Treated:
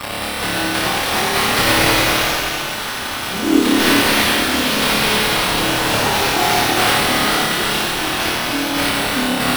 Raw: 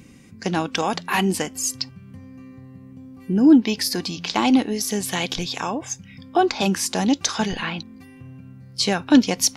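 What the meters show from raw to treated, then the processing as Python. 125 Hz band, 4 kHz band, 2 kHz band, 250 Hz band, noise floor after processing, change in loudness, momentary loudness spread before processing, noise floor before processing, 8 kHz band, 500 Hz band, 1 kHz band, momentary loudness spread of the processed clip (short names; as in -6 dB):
+4.5 dB, +11.0 dB, +14.0 dB, 0.0 dB, -24 dBFS, +5.5 dB, 15 LU, -45 dBFS, +4.5 dB, +6.0 dB, +8.5 dB, 7 LU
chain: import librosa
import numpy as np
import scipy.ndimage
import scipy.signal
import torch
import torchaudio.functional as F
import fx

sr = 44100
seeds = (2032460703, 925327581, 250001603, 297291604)

p1 = x + 0.5 * 10.0 ** (-11.0 / 20.0) * np.diff(np.sign(x), prepend=np.sign(x[:1]))
p2 = fx.spec_erase(p1, sr, start_s=4.37, length_s=1.28, low_hz=560.0, high_hz=8800.0)
p3 = fx.low_shelf(p2, sr, hz=250.0, db=-11.0)
p4 = p3 + 10.0 ** (-27.0 / 20.0) * np.sin(2.0 * np.pi * 12000.0 * np.arange(len(p3)) / sr)
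p5 = fx.chopper(p4, sr, hz=9.6, depth_pct=60, duty_pct=50)
p6 = fx.sample_hold(p5, sr, seeds[0], rate_hz=6600.0, jitter_pct=0)
p7 = p6 + fx.room_flutter(p6, sr, wall_m=4.8, rt60_s=1.1, dry=0)
p8 = fx.echo_pitch(p7, sr, ms=367, semitones=2, count=3, db_per_echo=-3.0)
p9 = fx.rev_gated(p8, sr, seeds[1], gate_ms=440, shape='flat', drr_db=-2.5)
y = p9 * 10.0 ** (-6.0 / 20.0)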